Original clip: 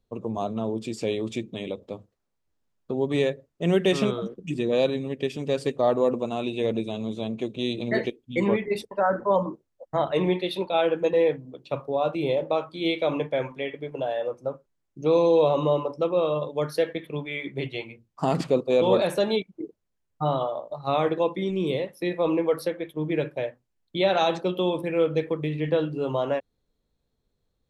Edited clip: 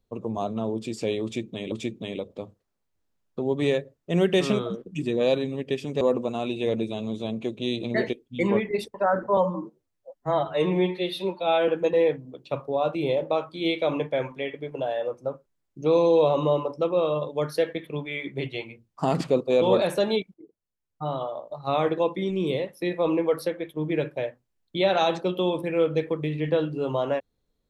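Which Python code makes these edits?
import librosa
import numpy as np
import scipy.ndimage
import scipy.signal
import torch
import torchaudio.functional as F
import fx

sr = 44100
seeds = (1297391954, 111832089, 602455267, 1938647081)

y = fx.edit(x, sr, fx.repeat(start_s=1.24, length_s=0.48, count=2),
    fx.cut(start_s=5.53, length_s=0.45),
    fx.stretch_span(start_s=9.34, length_s=1.54, factor=1.5),
    fx.fade_in_from(start_s=19.54, length_s=1.51, floor_db=-16.5), tone=tone)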